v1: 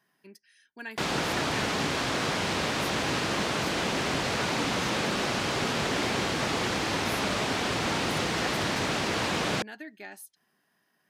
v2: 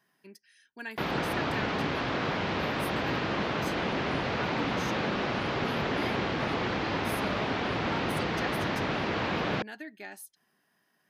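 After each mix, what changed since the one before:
background: add air absorption 250 m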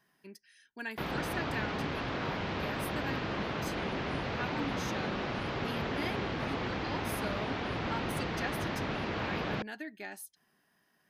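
background -5.5 dB; master: add low shelf 73 Hz +10.5 dB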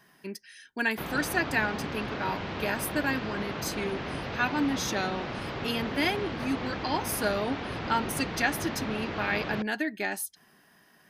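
speech +12.0 dB

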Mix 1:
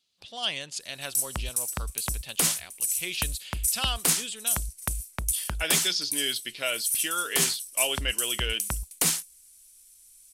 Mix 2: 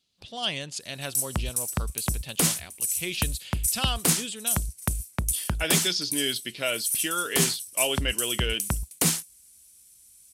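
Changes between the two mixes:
background: add HPF 81 Hz 12 dB/oct; master: add low shelf 400 Hz +10.5 dB

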